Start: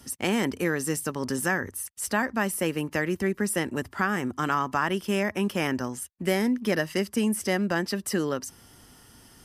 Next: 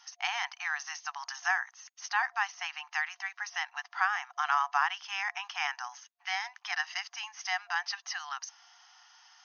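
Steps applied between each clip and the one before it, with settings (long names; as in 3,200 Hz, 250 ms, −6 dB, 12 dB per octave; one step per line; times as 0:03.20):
brick-wall band-pass 700–6,600 Hz
level −1 dB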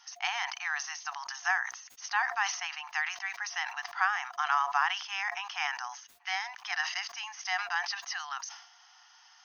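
level that may fall only so fast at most 82 dB per second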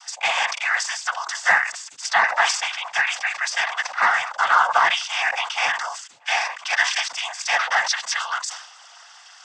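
in parallel at −5 dB: hard clipping −25 dBFS, distortion −10 dB
on the sum: cochlear-implant simulation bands 16
level +8.5 dB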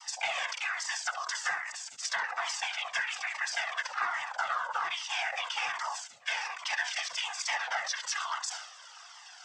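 downward compressor 5 to 1, threshold −26 dBFS, peak gain reduction 13 dB
flutter between parallel walls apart 11.7 metres, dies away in 0.28 s
flanger whose copies keep moving one way falling 1.2 Hz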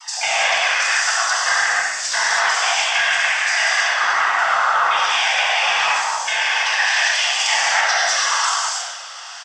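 on a send: echo with shifted repeats 96 ms, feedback 50%, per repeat −50 Hz, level −10 dB
on the sum: reverb whose tail is shaped and stops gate 350 ms flat, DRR −7 dB
level +8 dB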